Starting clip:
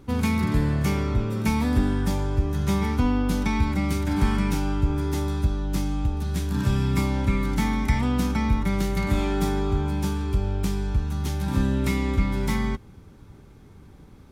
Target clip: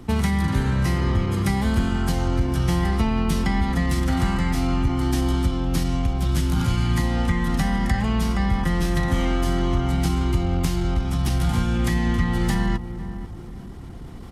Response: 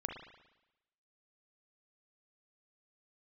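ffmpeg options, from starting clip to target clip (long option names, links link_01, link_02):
-filter_complex "[0:a]acrossover=split=100|1100[link_01][link_02][link_03];[link_01]acompressor=threshold=-32dB:ratio=4[link_04];[link_02]acompressor=threshold=-31dB:ratio=4[link_05];[link_03]acompressor=threshold=-39dB:ratio=4[link_06];[link_04][link_05][link_06]amix=inputs=3:normalize=0,asplit=2[link_07][link_08];[link_08]adelay=492,lowpass=frequency=1000:poles=1,volume=-10.5dB,asplit=2[link_09][link_10];[link_10]adelay=492,lowpass=frequency=1000:poles=1,volume=0.35,asplit=2[link_11][link_12];[link_12]adelay=492,lowpass=frequency=1000:poles=1,volume=0.35,asplit=2[link_13][link_14];[link_14]adelay=492,lowpass=frequency=1000:poles=1,volume=0.35[link_15];[link_07][link_09][link_11][link_13][link_15]amix=inputs=5:normalize=0,areverse,acompressor=mode=upward:threshold=-39dB:ratio=2.5,areverse,asetrate=39289,aresample=44100,atempo=1.12246,volume=8dB"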